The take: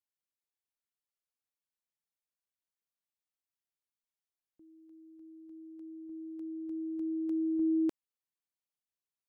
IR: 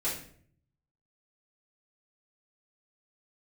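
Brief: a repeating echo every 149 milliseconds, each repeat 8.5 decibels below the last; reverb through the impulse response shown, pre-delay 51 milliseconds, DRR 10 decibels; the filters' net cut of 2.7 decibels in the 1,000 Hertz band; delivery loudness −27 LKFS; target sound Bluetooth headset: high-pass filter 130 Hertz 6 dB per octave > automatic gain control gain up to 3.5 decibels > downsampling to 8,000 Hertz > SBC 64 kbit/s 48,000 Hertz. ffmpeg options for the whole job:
-filter_complex "[0:a]equalizer=frequency=1000:width_type=o:gain=-3.5,aecho=1:1:149|298|447|596:0.376|0.143|0.0543|0.0206,asplit=2[link_01][link_02];[1:a]atrim=start_sample=2205,adelay=51[link_03];[link_02][link_03]afir=irnorm=-1:irlink=0,volume=-16dB[link_04];[link_01][link_04]amix=inputs=2:normalize=0,highpass=frequency=130:poles=1,dynaudnorm=maxgain=3.5dB,aresample=8000,aresample=44100,volume=8.5dB" -ar 48000 -c:a sbc -b:a 64k

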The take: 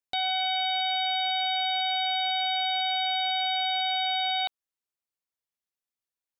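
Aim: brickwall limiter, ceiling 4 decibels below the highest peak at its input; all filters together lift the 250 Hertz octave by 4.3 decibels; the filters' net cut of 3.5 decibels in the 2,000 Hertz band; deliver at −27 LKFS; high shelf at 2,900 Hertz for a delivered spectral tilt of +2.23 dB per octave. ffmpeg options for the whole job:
ffmpeg -i in.wav -af "equalizer=frequency=250:width_type=o:gain=5.5,equalizer=frequency=2000:width_type=o:gain=-6.5,highshelf=frequency=2900:gain=5,volume=2dB,alimiter=limit=-21dB:level=0:latency=1" out.wav

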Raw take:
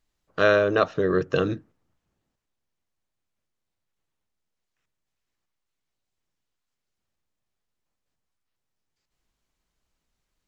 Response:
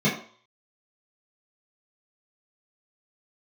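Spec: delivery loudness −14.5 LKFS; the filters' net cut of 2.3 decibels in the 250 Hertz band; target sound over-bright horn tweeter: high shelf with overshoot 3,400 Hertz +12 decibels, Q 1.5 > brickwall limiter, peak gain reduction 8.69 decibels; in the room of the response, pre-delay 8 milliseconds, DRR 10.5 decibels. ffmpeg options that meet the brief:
-filter_complex "[0:a]equalizer=frequency=250:width_type=o:gain=-3.5,asplit=2[link_01][link_02];[1:a]atrim=start_sample=2205,adelay=8[link_03];[link_02][link_03]afir=irnorm=-1:irlink=0,volume=-25.5dB[link_04];[link_01][link_04]amix=inputs=2:normalize=0,highshelf=frequency=3400:width_type=q:width=1.5:gain=12,volume=11.5dB,alimiter=limit=-1.5dB:level=0:latency=1"

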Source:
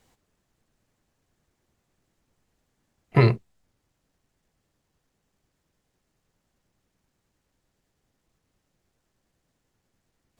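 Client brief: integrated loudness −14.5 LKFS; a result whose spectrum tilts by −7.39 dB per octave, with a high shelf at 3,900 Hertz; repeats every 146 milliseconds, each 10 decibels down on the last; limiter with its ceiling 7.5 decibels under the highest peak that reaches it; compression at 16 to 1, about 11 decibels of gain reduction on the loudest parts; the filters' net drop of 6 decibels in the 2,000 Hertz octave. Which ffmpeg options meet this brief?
ffmpeg -i in.wav -af "equalizer=frequency=2000:width_type=o:gain=-8.5,highshelf=frequency=3900:gain=6.5,acompressor=threshold=-23dB:ratio=16,alimiter=limit=-22.5dB:level=0:latency=1,aecho=1:1:146|292|438|584:0.316|0.101|0.0324|0.0104,volume=22dB" out.wav

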